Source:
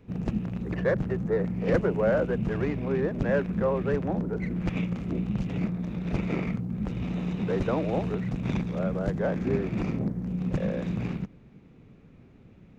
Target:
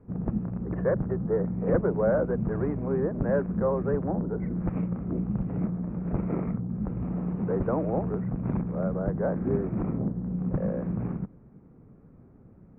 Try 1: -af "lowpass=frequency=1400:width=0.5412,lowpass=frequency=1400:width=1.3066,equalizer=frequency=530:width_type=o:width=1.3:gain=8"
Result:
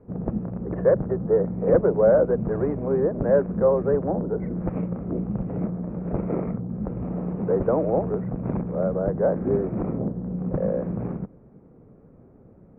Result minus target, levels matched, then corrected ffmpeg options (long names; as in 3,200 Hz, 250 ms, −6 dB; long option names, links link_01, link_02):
500 Hz band +3.0 dB
-af "lowpass=frequency=1400:width=0.5412,lowpass=frequency=1400:width=1.3066"